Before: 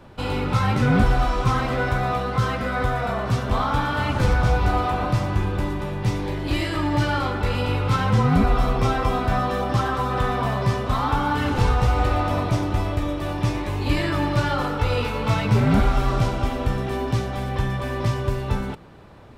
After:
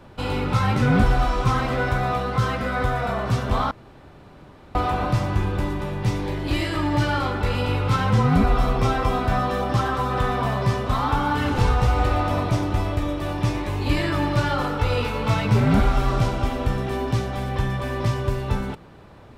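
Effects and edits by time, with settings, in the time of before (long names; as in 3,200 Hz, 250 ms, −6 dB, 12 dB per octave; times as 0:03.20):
0:03.71–0:04.75: fill with room tone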